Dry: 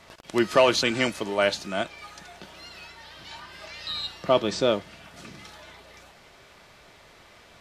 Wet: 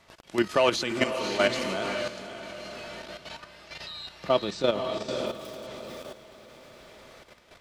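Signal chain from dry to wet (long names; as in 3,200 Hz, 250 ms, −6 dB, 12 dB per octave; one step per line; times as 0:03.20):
0:05.26–0:05.67: phase distortion by the signal itself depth 0.57 ms
feedback delay with all-pass diffusion 535 ms, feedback 45%, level −5 dB
output level in coarse steps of 10 dB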